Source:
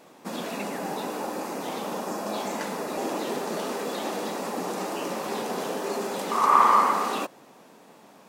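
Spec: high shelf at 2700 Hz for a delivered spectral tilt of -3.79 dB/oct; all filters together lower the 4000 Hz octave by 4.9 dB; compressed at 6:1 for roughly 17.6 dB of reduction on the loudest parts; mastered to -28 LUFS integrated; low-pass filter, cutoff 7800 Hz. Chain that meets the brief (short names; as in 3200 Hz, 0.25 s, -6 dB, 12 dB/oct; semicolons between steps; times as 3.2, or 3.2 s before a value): LPF 7800 Hz; high shelf 2700 Hz -3 dB; bell 4000 Hz -3.5 dB; compressor 6:1, threshold -34 dBFS; gain +9.5 dB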